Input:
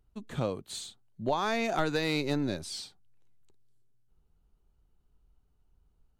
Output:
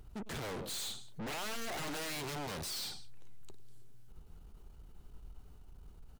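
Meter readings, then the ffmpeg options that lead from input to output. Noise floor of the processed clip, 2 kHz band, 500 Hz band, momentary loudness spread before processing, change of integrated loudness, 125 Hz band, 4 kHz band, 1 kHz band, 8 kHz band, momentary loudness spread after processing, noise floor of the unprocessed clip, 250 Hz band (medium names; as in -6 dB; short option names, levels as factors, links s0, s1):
-56 dBFS, -7.0 dB, -11.5 dB, 12 LU, -8.0 dB, -9.0 dB, -2.5 dB, -9.5 dB, +1.5 dB, 20 LU, -71 dBFS, -11.5 dB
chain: -af "aecho=1:1:98|196:0.0794|0.0238,aeval=exprs='0.0266*(abs(mod(val(0)/0.0266+3,4)-2)-1)':c=same,aeval=exprs='(tanh(631*val(0)+0.4)-tanh(0.4))/631':c=same,volume=6.68"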